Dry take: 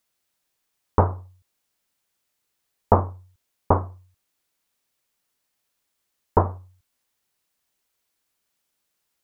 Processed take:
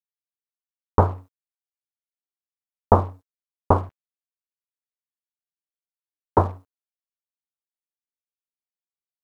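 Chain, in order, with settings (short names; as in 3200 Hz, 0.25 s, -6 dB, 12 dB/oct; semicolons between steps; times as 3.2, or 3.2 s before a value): 3.89–6.38 Bessel high-pass 200 Hz, order 4; crossover distortion -46 dBFS; gain +1.5 dB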